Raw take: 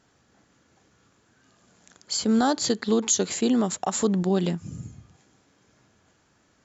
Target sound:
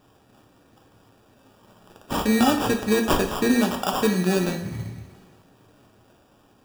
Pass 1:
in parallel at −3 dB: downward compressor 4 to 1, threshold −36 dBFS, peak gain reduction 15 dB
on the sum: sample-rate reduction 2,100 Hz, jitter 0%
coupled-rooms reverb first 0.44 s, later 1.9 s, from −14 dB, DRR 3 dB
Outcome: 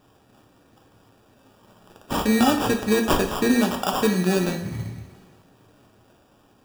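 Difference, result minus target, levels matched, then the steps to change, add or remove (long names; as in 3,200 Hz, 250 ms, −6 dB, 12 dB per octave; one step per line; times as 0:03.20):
downward compressor: peak gain reduction −5.5 dB
change: downward compressor 4 to 1, threshold −43 dBFS, peak gain reduction 20.5 dB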